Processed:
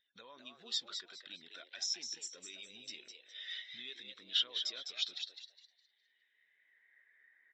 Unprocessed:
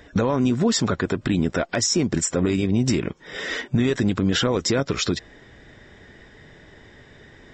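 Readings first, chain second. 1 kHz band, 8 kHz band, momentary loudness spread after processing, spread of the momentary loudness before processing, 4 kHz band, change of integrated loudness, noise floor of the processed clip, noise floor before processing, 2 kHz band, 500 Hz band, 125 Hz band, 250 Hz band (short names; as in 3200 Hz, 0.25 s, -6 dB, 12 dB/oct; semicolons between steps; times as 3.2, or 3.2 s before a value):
-28.5 dB, -18.5 dB, 17 LU, 6 LU, -8.0 dB, -17.0 dB, -77 dBFS, -49 dBFS, -20.0 dB, -35.5 dB, under -40 dB, under -40 dB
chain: band-pass sweep 3600 Hz -> 1800 Hz, 5.81–7; frequency-shifting echo 0.206 s, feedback 43%, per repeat +120 Hz, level -4.5 dB; spectral expander 1.5:1; gain -4.5 dB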